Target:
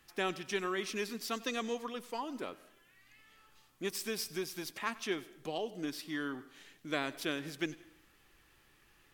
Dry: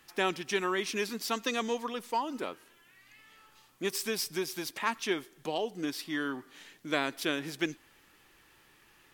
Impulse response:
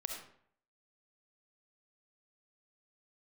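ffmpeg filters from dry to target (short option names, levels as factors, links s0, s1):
-filter_complex "[0:a]lowshelf=f=91:g=10,bandreject=f=920:w=15,asplit=2[s0][s1];[1:a]atrim=start_sample=2205,adelay=96[s2];[s1][s2]afir=irnorm=-1:irlink=0,volume=0.126[s3];[s0][s3]amix=inputs=2:normalize=0,volume=0.562"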